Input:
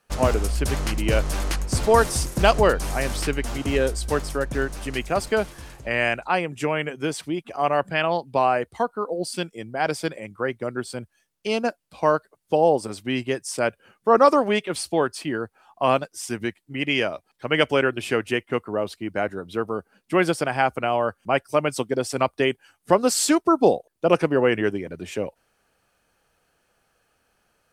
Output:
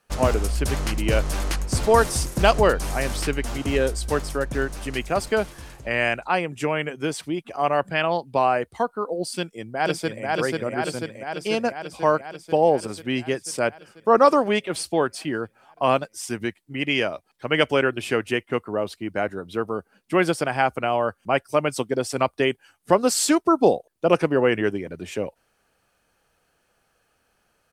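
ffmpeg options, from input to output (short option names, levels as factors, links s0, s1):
-filter_complex "[0:a]asplit=2[s0][s1];[s1]afade=t=in:st=9.36:d=0.01,afade=t=out:st=10.25:d=0.01,aecho=0:1:490|980|1470|1960|2450|2940|3430|3920|4410|4900|5390|5880:0.841395|0.588977|0.412284|0.288599|0.202019|0.141413|0.0989893|0.0692925|0.0485048|0.0339533|0.0237673|0.0166371[s2];[s0][s2]amix=inputs=2:normalize=0"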